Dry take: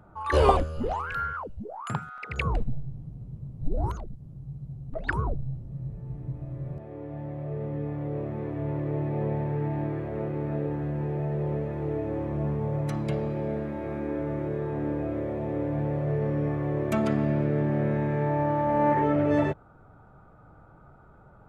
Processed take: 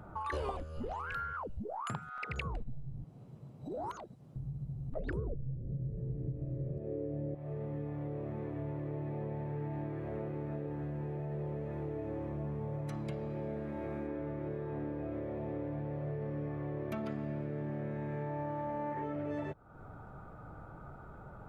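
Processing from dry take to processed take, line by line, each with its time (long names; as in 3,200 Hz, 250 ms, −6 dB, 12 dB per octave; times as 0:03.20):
0:03.04–0:04.36: meter weighting curve A
0:04.97–0:07.35: low shelf with overshoot 660 Hz +10 dB, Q 3
0:14.07–0:17.09: parametric band 7,700 Hz −14.5 dB 0.41 octaves
whole clip: downward compressor 5 to 1, threshold −41 dBFS; level +3.5 dB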